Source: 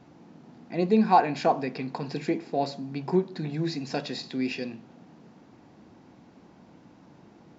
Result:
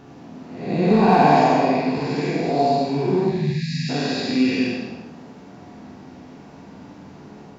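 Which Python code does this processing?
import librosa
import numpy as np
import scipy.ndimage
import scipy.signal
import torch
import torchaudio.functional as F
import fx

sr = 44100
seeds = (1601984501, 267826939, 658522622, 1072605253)

p1 = fx.spec_blur(x, sr, span_ms=270.0)
p2 = fx.room_flutter(p1, sr, wall_m=8.1, rt60_s=0.39)
p3 = np.clip(10.0 ** (22.5 / 20.0) * p2, -1.0, 1.0) / 10.0 ** (22.5 / 20.0)
p4 = p2 + F.gain(torch.from_numpy(p3), -5.0).numpy()
p5 = fx.spec_erase(p4, sr, start_s=3.3, length_s=0.59, low_hz=240.0, high_hz=1600.0)
p6 = fx.rev_gated(p5, sr, seeds[0], gate_ms=330, shape='falling', drr_db=0.5)
y = F.gain(torch.from_numpy(p6), 6.0).numpy()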